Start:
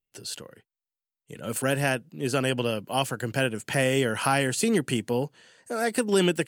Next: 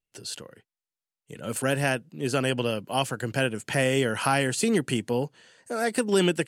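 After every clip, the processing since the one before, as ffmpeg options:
-af "lowpass=12k"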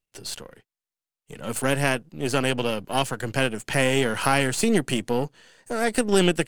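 -af "aeval=exprs='if(lt(val(0),0),0.447*val(0),val(0))':c=same,volume=4.5dB"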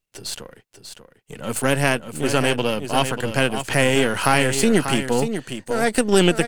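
-af "aecho=1:1:591:0.355,volume=3.5dB"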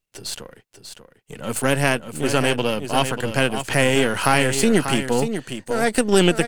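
-af anull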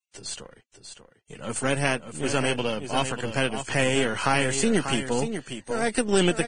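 -af "volume=-5.5dB" -ar 22050 -c:a libvorbis -b:a 16k

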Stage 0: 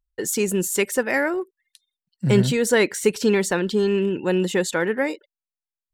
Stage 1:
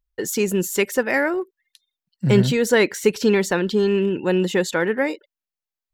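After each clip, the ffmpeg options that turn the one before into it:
-af "equalizer=f=8.9k:t=o:w=0.46:g=-8.5,volume=1.5dB"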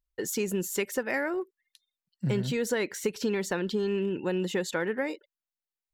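-af "acompressor=threshold=-18dB:ratio=6,volume=-6.5dB"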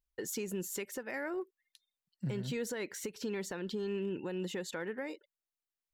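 -af "alimiter=level_in=1dB:limit=-24dB:level=0:latency=1:release=346,volume=-1dB,volume=-3.5dB"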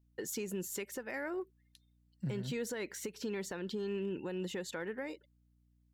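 -af "aeval=exprs='val(0)+0.000398*(sin(2*PI*60*n/s)+sin(2*PI*2*60*n/s)/2+sin(2*PI*3*60*n/s)/3+sin(2*PI*4*60*n/s)/4+sin(2*PI*5*60*n/s)/5)':c=same,volume=-1dB"

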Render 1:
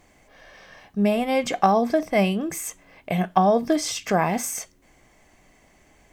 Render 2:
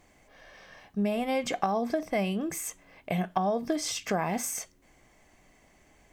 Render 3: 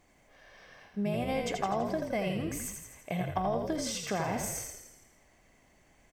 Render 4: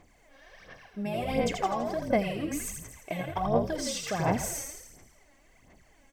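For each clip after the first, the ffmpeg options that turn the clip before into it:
-af "acompressor=threshold=-20dB:ratio=6,volume=-4dB"
-filter_complex "[0:a]asplit=9[a][b][c][d][e][f][g][h][i];[b]adelay=83,afreqshift=-42,volume=-5dB[j];[c]adelay=166,afreqshift=-84,volume=-9.7dB[k];[d]adelay=249,afreqshift=-126,volume=-14.5dB[l];[e]adelay=332,afreqshift=-168,volume=-19.2dB[m];[f]adelay=415,afreqshift=-210,volume=-23.9dB[n];[g]adelay=498,afreqshift=-252,volume=-28.7dB[o];[h]adelay=581,afreqshift=-294,volume=-33.4dB[p];[i]adelay=664,afreqshift=-336,volume=-38.1dB[q];[a][j][k][l][m][n][o][p][q]amix=inputs=9:normalize=0,volume=-4.5dB"
-af "aphaser=in_gain=1:out_gain=1:delay=3.7:decay=0.63:speed=1.4:type=sinusoidal"

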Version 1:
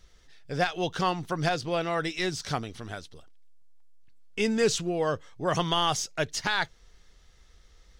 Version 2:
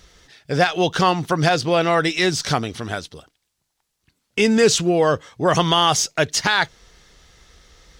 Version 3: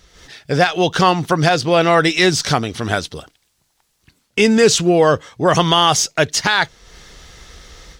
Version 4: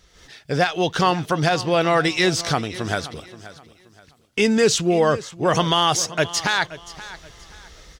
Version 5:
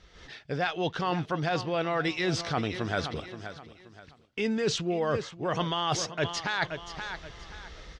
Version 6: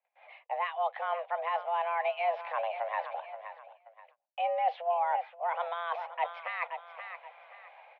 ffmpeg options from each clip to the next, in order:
-filter_complex "[0:a]highpass=f=85:p=1,asplit=2[a][b];[b]alimiter=limit=-21dB:level=0:latency=1:release=100,volume=0.5dB[c];[a][c]amix=inputs=2:normalize=0,volume=5.5dB"
-af "dynaudnorm=f=120:g=3:m=11dB,volume=-1dB"
-af "aecho=1:1:527|1054|1581:0.15|0.0464|0.0144,volume=-5dB"
-af "lowpass=4k,areverse,acompressor=threshold=-26dB:ratio=6,areverse"
-af "agate=range=-24dB:threshold=-51dB:ratio=16:detection=peak,equalizer=f=1.2k:t=o:w=1.5:g=-12.5,highpass=f=250:t=q:w=0.5412,highpass=f=250:t=q:w=1.307,lowpass=f=2.2k:t=q:w=0.5176,lowpass=f=2.2k:t=q:w=0.7071,lowpass=f=2.2k:t=q:w=1.932,afreqshift=340,volume=3dB"

